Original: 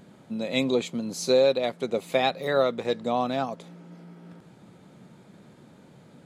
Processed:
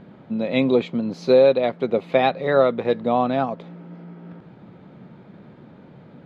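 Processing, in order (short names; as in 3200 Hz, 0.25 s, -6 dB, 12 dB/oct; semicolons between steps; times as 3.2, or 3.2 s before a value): air absorption 330 m; gain +7 dB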